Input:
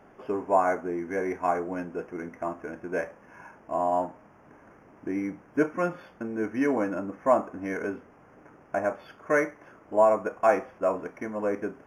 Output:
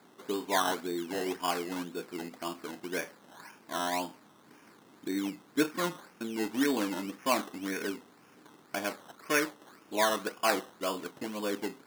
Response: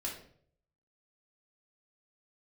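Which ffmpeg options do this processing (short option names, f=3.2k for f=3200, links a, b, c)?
-af "equalizer=f=610:t=o:w=0.86:g=-10.5,acrusher=samples=15:mix=1:aa=0.000001:lfo=1:lforange=9:lforate=1.9,highpass=200"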